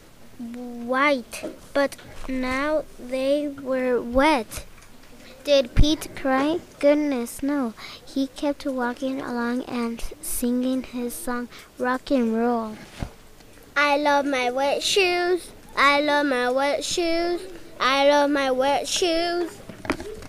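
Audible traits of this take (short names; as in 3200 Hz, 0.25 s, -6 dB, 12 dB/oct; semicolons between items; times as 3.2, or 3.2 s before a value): noise floor -48 dBFS; spectral tilt -4.0 dB/oct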